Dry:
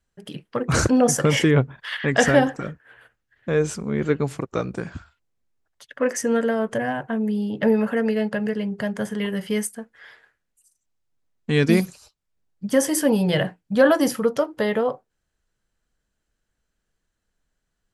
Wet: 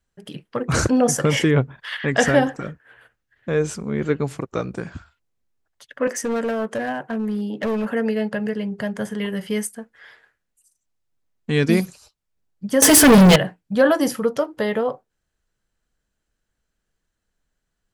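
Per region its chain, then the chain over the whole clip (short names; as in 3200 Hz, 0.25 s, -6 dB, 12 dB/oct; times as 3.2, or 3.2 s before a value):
6.07–7.91 HPF 170 Hz 24 dB/oct + hard clip -19.5 dBFS
12.82–13.36 comb 4.6 ms, depth 73% + de-hum 57.31 Hz, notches 4 + sample leveller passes 5
whole clip: dry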